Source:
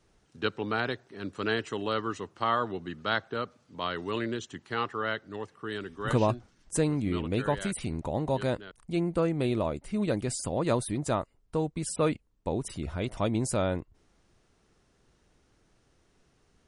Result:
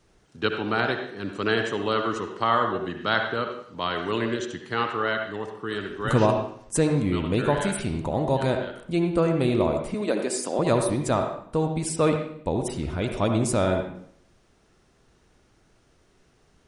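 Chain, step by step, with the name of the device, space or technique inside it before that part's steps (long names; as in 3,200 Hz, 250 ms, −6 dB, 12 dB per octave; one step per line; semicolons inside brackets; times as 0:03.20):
0:09.94–0:10.59: high-pass filter 250 Hz 24 dB per octave
filtered reverb send (on a send: high-pass filter 160 Hz 12 dB per octave + low-pass filter 4,100 Hz 12 dB per octave + convolution reverb RT60 0.65 s, pre-delay 58 ms, DRR 4 dB)
on the sum: level +4.5 dB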